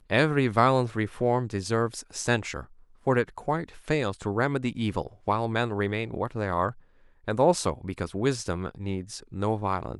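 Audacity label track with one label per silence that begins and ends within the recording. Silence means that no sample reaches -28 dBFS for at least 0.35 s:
2.610000	3.070000	silence
6.700000	7.280000	silence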